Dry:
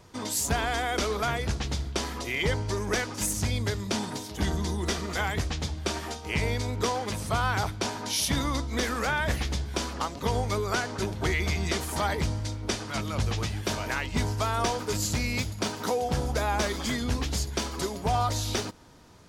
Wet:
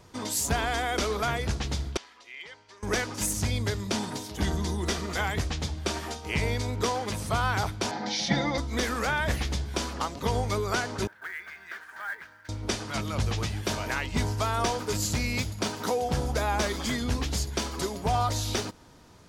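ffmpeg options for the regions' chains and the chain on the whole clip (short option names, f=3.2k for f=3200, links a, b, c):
-filter_complex "[0:a]asettb=1/sr,asplit=3[a][b][c];[a]atrim=end=1.974[d];[b]atrim=start=1.97:end=2.83,asetpts=PTS-STARTPTS,afade=t=in:d=0.004:c=qsin,afade=t=out:st=0.856:d=0.004:c=qsin,lowpass=2.5k,aderivative,asoftclip=type=hard:threshold=-31.5dB[e];[c]atrim=start=2.826[f];[d][e]acrossfade=d=0.004:c1=hsin:c2=qsin[g];[g][f]acrossfade=d=0.004:c1=qsin:c2=hsin,asettb=1/sr,asplit=3[h][i][j];[h]atrim=end=7.914[k];[i]atrim=start=7.91:end=8.58,asetpts=PTS-STARTPTS,afade=t=in:d=0.004:c=qsin,afade=t=out:st=0.666:d=0.004:c=qsin,highpass=120,equalizer=f=220:t=q:w=4:g=7,equalizer=f=530:t=q:w=4:g=3,equalizer=f=780:t=q:w=4:g=10,equalizer=f=1.1k:t=q:w=4:g=-9,equalizer=f=2k:t=q:w=4:g=5,equalizer=f=2.8k:t=q:w=4:g=-8,lowpass=f=5.2k:w=0.5412,lowpass=f=5.2k:w=1.3066,aecho=1:1:5.8:0.72,atrim=end_sample=29547[l];[j]atrim=start=8.576[m];[k][l]acrossfade=d=0.004:c1=hsin:c2=qsin[n];[n][m]acrossfade=d=0.004:c1=qsin:c2=hsin,asettb=1/sr,asplit=3[o][p][q];[o]atrim=end=11.074[r];[p]atrim=start=11.07:end=12.49,asetpts=PTS-STARTPTS,afade=t=in:d=0.004:c=qsin,afade=t=out:st=1.416:d=0.004:c=qsin,acontrast=36,bandpass=f=1.6k:t=q:w=9,acrusher=bits=5:mode=log:mix=0:aa=0.000001[s];[q]atrim=start=12.486[t];[r][s]acrossfade=d=0.004:c1=hsin:c2=qsin[u];[u][t]acrossfade=d=0.004:c1=qsin:c2=hsin"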